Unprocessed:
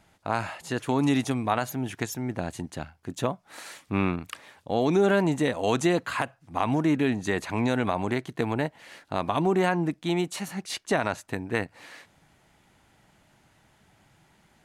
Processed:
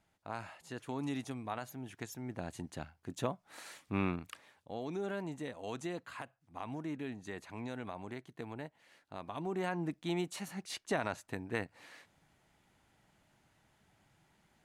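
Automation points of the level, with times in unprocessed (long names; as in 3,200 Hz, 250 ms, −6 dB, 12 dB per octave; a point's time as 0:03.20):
0:01.88 −14.5 dB
0:02.70 −8 dB
0:04.16 −8 dB
0:04.82 −17 dB
0:09.27 −17 dB
0:09.95 −9 dB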